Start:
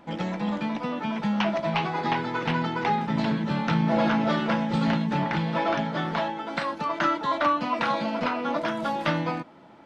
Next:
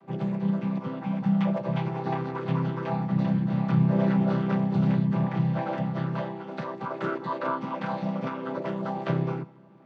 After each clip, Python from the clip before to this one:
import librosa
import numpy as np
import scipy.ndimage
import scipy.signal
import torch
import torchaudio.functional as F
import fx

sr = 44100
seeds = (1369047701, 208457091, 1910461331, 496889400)

y = fx.chord_vocoder(x, sr, chord='major triad', root=48)
y = y + 10.0 ** (-23.0 / 20.0) * np.pad(y, (int(154 * sr / 1000.0), 0))[:len(y)]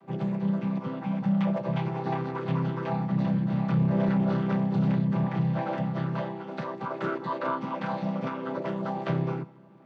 y = 10.0 ** (-16.5 / 20.0) * np.tanh(x / 10.0 ** (-16.5 / 20.0))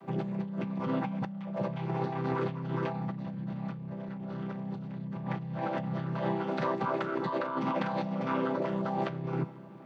y = fx.over_compress(x, sr, threshold_db=-34.0, ratio=-1.0)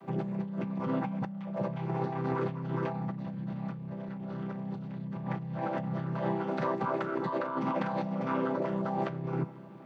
y = fx.dynamic_eq(x, sr, hz=3600.0, q=0.98, threshold_db=-56.0, ratio=4.0, max_db=-5)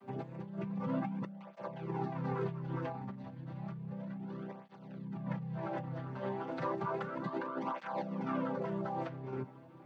y = fx.flanger_cancel(x, sr, hz=0.32, depth_ms=6.3)
y = y * 10.0 ** (-2.5 / 20.0)